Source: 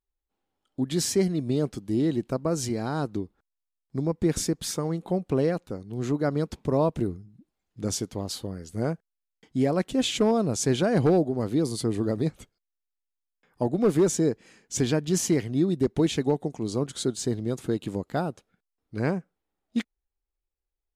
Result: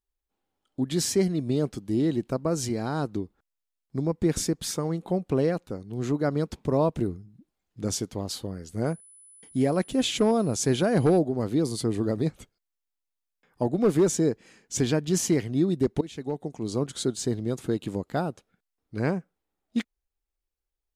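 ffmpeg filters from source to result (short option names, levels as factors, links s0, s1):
-filter_complex "[0:a]asettb=1/sr,asplit=3[s0][s1][s2];[s0]atrim=end=8.864[s3];[s1]atrim=start=8.86:end=11.19,asetpts=PTS-STARTPTS,afade=t=in:d=0.004:c=qsin,afade=t=out:st=2.326:d=0.004:c=qsin,aeval=exprs='val(0)+0.00316*sin(2*PI*10000*n/s)':c=same[s4];[s2]atrim=start=11.186[s5];[s3][s4]acrossfade=d=0.004:c1=hsin:c2=qsin[s6];[s6][s5]acrossfade=d=0.004:c1=qsin:c2=hsin,asplit=2[s7][s8];[s7]atrim=end=16.01,asetpts=PTS-STARTPTS,afade=t=out:st=16.006:d=0.004:c=hsin:silence=0.105925[s9];[s8]atrim=start=16.01,asetpts=PTS-STARTPTS,afade=t=in:d=0.75:silence=0.105925[s10];[s9][s10]concat=n=2:v=0:a=1"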